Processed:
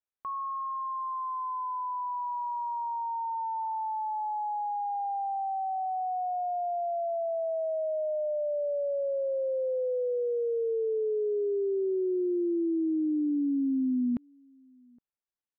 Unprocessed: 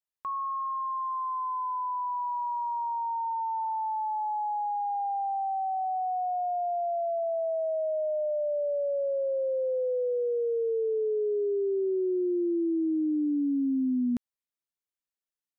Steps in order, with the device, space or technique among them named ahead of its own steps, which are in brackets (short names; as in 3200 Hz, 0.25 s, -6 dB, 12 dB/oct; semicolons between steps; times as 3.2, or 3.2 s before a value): shout across a valley (air absorption 420 m; outdoor echo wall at 140 m, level -30 dB)